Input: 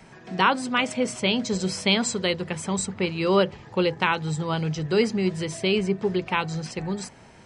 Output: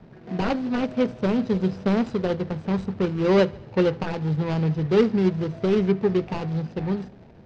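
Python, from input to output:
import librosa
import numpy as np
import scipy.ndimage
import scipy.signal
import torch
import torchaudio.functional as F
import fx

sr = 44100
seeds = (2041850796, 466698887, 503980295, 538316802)

y = scipy.ndimage.median_filter(x, 41, mode='constant')
y = scipy.signal.sosfilt(scipy.signal.butter(4, 5400.0, 'lowpass', fs=sr, output='sos'), y)
y = fx.echo_feedback(y, sr, ms=74, feedback_pct=56, wet_db=-23.5)
y = y * 10.0 ** (4.0 / 20.0)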